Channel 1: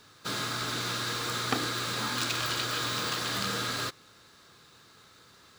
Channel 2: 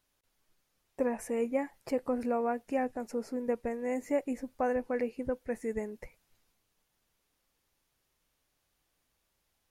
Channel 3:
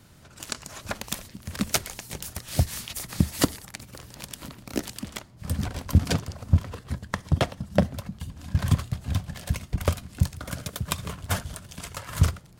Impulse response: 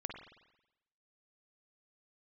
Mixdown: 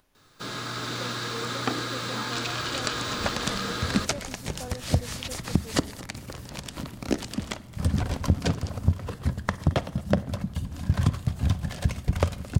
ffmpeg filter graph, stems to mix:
-filter_complex "[0:a]adelay=150,volume=-1dB[link_01];[1:a]highshelf=frequency=5100:gain=-9.5,acompressor=mode=upward:threshold=-33dB:ratio=2.5,volume=-13.5dB[link_02];[2:a]acompressor=threshold=-24dB:ratio=6,adelay=2350,volume=0.5dB,asplit=3[link_03][link_04][link_05];[link_04]volume=-12.5dB[link_06];[link_05]volume=-19dB[link_07];[3:a]atrim=start_sample=2205[link_08];[link_06][link_08]afir=irnorm=-1:irlink=0[link_09];[link_07]aecho=0:1:220|440|660|880|1100:1|0.37|0.137|0.0507|0.0187[link_10];[link_01][link_02][link_03][link_09][link_10]amix=inputs=5:normalize=0,acrossover=split=7900[link_11][link_12];[link_12]acompressor=threshold=-55dB:ratio=4:attack=1:release=60[link_13];[link_11][link_13]amix=inputs=2:normalize=0,equalizer=frequency=3500:width=0.32:gain=-3.5,dynaudnorm=framelen=170:gausssize=7:maxgain=4dB"

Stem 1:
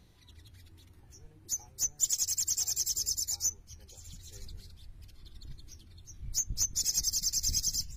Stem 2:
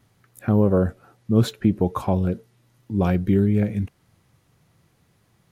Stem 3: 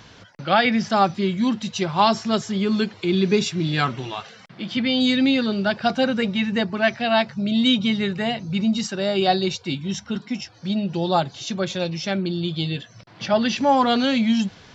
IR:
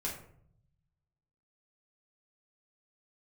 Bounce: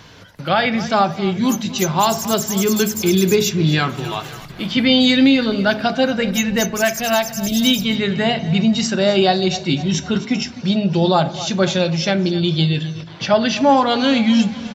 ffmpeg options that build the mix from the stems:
-filter_complex "[0:a]aemphasis=mode=production:type=50fm,volume=-4.5dB[link_01];[1:a]volume=-19.5dB[link_02];[2:a]volume=2dB,asplit=3[link_03][link_04][link_05];[link_04]volume=-10.5dB[link_06];[link_05]volume=-16dB[link_07];[3:a]atrim=start_sample=2205[link_08];[link_06][link_08]afir=irnorm=-1:irlink=0[link_09];[link_07]aecho=0:1:256|512|768|1024|1280|1536:1|0.45|0.202|0.0911|0.041|0.0185[link_10];[link_01][link_02][link_03][link_09][link_10]amix=inputs=5:normalize=0,dynaudnorm=framelen=130:gausssize=11:maxgain=11.5dB,alimiter=limit=-4.5dB:level=0:latency=1:release=433"

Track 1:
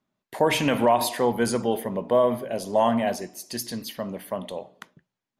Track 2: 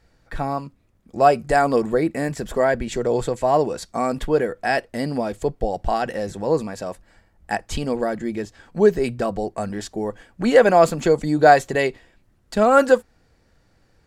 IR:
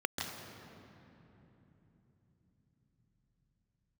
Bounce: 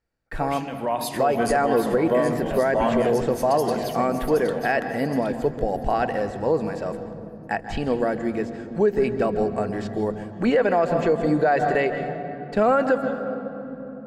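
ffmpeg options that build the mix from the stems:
-filter_complex "[0:a]volume=-2.5dB,afade=type=in:start_time=0.72:duration=0.43:silence=0.251189,asplit=3[link_01][link_02][link_03];[link_02]volume=-16dB[link_04];[link_03]volume=-7dB[link_05];[1:a]acrossover=split=4100[link_06][link_07];[link_07]acompressor=threshold=-53dB:ratio=4:attack=1:release=60[link_08];[link_06][link_08]amix=inputs=2:normalize=0,agate=range=-20dB:threshold=-47dB:ratio=16:detection=peak,volume=-2.5dB,asplit=2[link_09][link_10];[link_10]volume=-11dB[link_11];[2:a]atrim=start_sample=2205[link_12];[link_04][link_11]amix=inputs=2:normalize=0[link_13];[link_13][link_12]afir=irnorm=-1:irlink=0[link_14];[link_05]aecho=0:1:769|1538|2307|3076|3845:1|0.33|0.109|0.0359|0.0119[link_15];[link_01][link_09][link_14][link_15]amix=inputs=4:normalize=0,alimiter=limit=-11dB:level=0:latency=1:release=113"

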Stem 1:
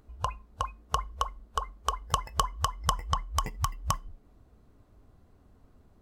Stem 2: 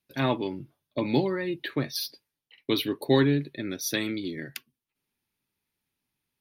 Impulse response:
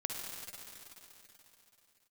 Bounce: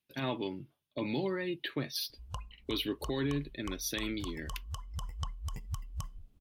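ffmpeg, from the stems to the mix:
-filter_complex "[0:a]bass=frequency=250:gain=11,treble=frequency=4000:gain=9,adelay=2100,volume=-15dB[link_01];[1:a]volume=-5.5dB[link_02];[link_01][link_02]amix=inputs=2:normalize=0,equalizer=frequency=3000:width_type=o:width=0.54:gain=6,alimiter=limit=-24dB:level=0:latency=1:release=52"

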